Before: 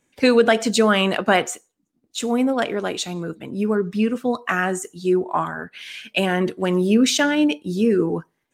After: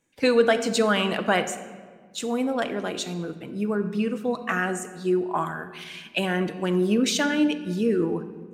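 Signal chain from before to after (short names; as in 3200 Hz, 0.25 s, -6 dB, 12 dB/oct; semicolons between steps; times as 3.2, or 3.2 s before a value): 5.35–5.84 high shelf 5700 Hz +9.5 dB; shoebox room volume 1900 m³, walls mixed, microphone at 0.66 m; gain -5 dB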